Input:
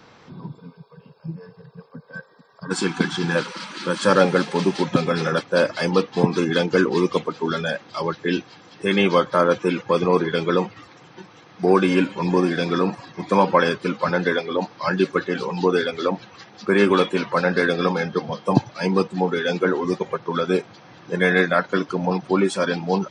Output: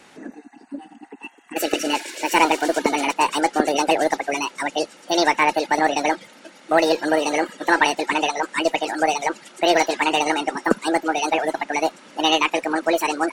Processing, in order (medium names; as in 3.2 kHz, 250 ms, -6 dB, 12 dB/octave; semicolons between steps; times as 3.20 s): Chebyshev shaper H 4 -30 dB, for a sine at -1.5 dBFS; speed mistake 45 rpm record played at 78 rpm